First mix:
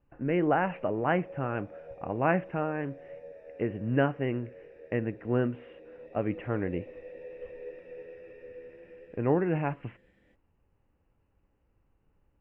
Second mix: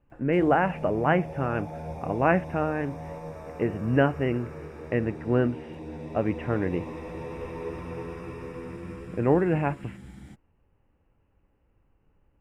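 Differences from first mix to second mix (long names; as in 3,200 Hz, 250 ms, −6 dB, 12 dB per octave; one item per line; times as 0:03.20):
speech +4.0 dB
background: remove formant filter e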